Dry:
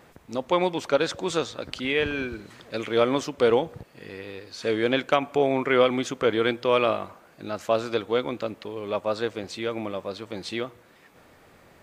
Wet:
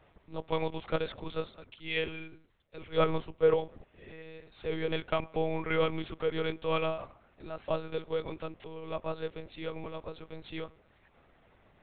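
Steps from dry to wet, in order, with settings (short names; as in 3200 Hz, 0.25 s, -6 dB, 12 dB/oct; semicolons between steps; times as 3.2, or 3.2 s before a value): notch 1600 Hz, Q 12; monotone LPC vocoder at 8 kHz 160 Hz; 1.24–3.54 three-band expander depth 100%; gain -8.5 dB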